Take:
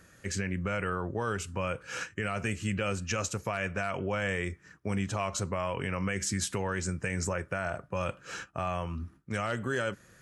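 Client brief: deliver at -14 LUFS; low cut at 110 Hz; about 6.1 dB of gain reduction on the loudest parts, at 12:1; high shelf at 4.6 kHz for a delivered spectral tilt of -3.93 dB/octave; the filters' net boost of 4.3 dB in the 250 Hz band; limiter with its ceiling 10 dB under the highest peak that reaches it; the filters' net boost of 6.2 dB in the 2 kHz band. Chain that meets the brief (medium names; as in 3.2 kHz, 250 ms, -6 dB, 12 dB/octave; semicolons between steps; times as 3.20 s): high-pass 110 Hz; peaking EQ 250 Hz +6.5 dB; peaking EQ 2 kHz +6.5 dB; treble shelf 4.6 kHz +7.5 dB; compression 12:1, threshold -29 dBFS; trim +24 dB; peak limiter -3.5 dBFS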